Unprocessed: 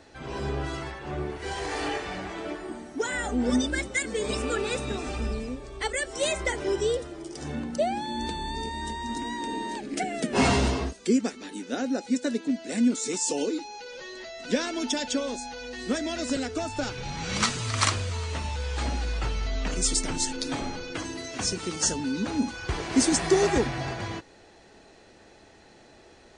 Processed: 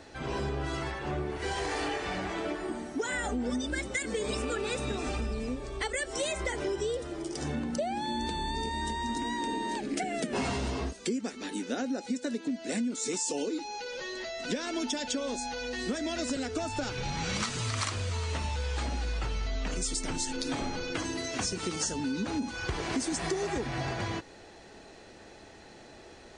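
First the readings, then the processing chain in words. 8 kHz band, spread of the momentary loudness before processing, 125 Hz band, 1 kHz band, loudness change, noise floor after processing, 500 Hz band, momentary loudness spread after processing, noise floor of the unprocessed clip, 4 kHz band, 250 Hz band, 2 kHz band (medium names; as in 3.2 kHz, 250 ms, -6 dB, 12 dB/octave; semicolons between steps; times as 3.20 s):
-5.5 dB, 10 LU, -3.0 dB, -3.0 dB, -4.5 dB, -51 dBFS, -4.5 dB, 5 LU, -53 dBFS, -4.0 dB, -5.0 dB, -3.0 dB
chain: in parallel at -1 dB: peak limiter -21 dBFS, peak gain reduction 10 dB; on the sum: compression, threshold -26 dBFS, peak gain reduction 12 dB; trim -3 dB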